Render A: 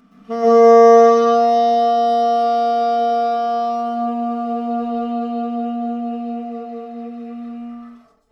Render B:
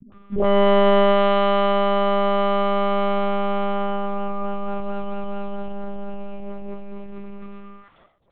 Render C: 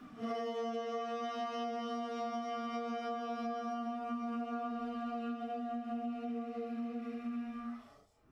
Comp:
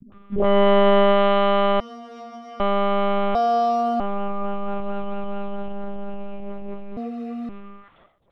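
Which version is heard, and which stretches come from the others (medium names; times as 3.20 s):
B
1.80–2.60 s: from C
3.35–4.00 s: from A
6.97–7.49 s: from A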